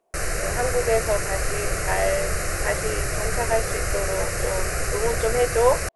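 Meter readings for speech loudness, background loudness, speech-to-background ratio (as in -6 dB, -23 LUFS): -27.0 LUFS, -26.5 LUFS, -0.5 dB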